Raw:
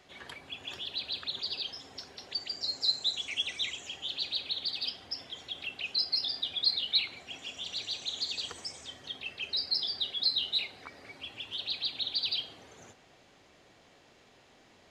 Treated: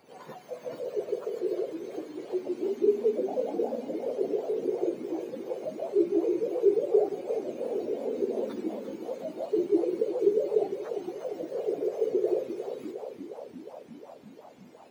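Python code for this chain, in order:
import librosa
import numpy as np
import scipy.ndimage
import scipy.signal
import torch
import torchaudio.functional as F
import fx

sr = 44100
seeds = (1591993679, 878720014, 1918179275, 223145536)

y = fx.octave_mirror(x, sr, pivot_hz=1300.0)
y = fx.echo_warbled(y, sr, ms=353, feedback_pct=72, rate_hz=2.8, cents=154, wet_db=-10.0)
y = y * 10.0 ** (1.5 / 20.0)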